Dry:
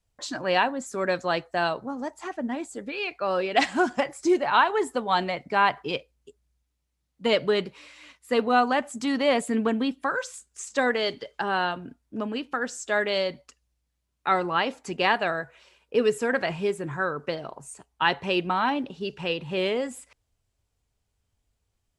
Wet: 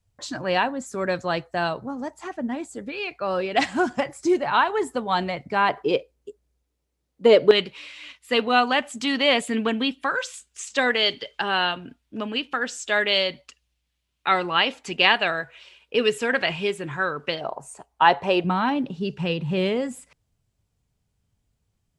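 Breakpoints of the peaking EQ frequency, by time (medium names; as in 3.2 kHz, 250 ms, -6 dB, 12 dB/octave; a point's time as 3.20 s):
peaking EQ +11 dB 1.3 oct
100 Hz
from 5.69 s 430 Hz
from 7.51 s 3 kHz
from 17.41 s 730 Hz
from 18.44 s 160 Hz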